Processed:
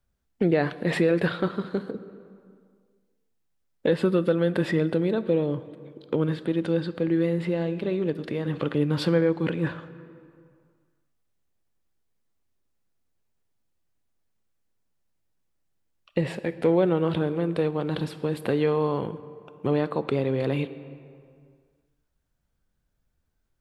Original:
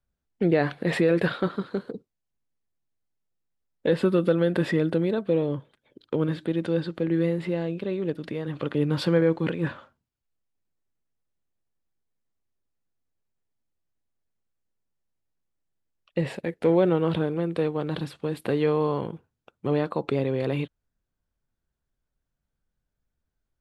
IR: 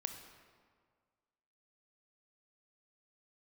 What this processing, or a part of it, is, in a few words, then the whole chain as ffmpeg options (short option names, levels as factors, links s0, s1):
ducked reverb: -filter_complex "[0:a]asplit=3[s0][s1][s2];[1:a]atrim=start_sample=2205[s3];[s1][s3]afir=irnorm=-1:irlink=0[s4];[s2]apad=whole_len=1040944[s5];[s4][s5]sidechaincompress=threshold=0.0398:ratio=8:attack=16:release=1390,volume=2.11[s6];[s0][s6]amix=inputs=2:normalize=0,volume=0.668"